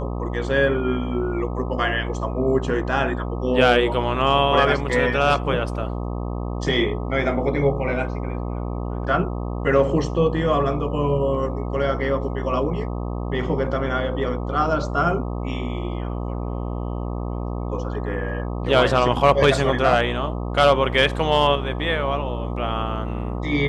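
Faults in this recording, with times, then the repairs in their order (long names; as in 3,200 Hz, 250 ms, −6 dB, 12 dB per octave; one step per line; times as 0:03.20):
mains buzz 60 Hz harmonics 21 −27 dBFS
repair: hum removal 60 Hz, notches 21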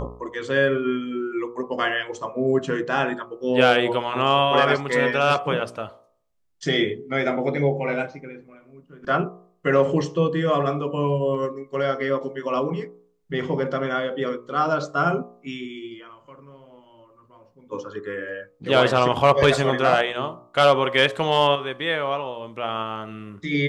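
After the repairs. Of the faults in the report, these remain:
none of them is left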